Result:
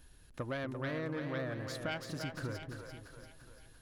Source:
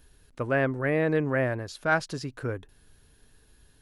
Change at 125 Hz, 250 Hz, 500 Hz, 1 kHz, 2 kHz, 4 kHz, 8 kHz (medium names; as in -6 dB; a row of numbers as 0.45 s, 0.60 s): -9.0 dB, -10.0 dB, -13.0 dB, -13.0 dB, -12.5 dB, -2.5 dB, -5.5 dB